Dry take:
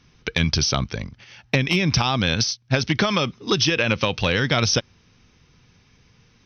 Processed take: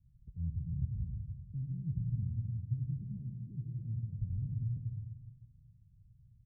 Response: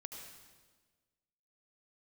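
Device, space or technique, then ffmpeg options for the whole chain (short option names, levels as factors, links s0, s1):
club heard from the street: -filter_complex "[0:a]alimiter=limit=0.158:level=0:latency=1,lowpass=f=130:w=0.5412,lowpass=f=130:w=1.3066[s0];[1:a]atrim=start_sample=2205[s1];[s0][s1]afir=irnorm=-1:irlink=0,volume=1.12"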